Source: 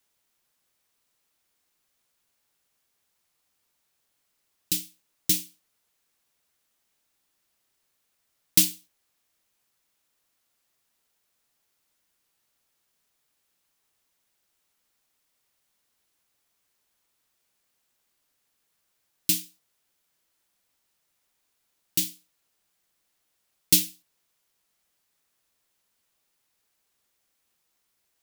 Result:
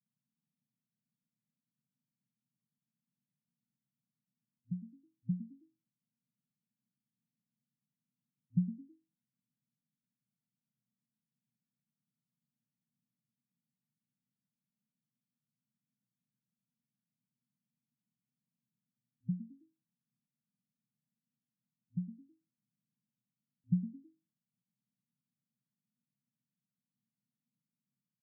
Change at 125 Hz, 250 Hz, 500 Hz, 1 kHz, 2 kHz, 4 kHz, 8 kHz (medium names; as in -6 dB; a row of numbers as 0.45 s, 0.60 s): +3.5 dB, 0.0 dB, under -25 dB, no reading, under -40 dB, under -40 dB, under -40 dB